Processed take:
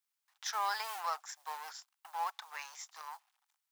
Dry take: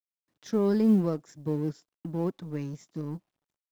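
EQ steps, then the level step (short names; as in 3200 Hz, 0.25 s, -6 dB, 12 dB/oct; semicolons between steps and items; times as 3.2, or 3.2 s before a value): Chebyshev high-pass 790 Hz, order 5; +9.0 dB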